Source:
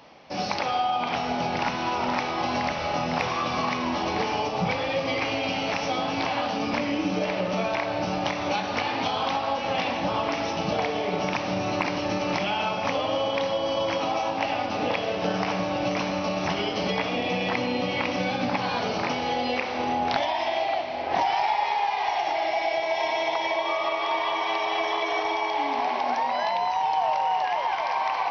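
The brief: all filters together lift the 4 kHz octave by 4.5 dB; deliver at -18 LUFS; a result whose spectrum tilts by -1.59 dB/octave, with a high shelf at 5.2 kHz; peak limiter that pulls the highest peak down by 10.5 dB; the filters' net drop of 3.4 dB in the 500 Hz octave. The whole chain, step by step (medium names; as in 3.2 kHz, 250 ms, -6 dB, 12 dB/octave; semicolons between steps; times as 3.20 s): peaking EQ 500 Hz -4.5 dB; peaking EQ 4 kHz +8.5 dB; treble shelf 5.2 kHz -5.5 dB; trim +9.5 dB; peak limiter -8.5 dBFS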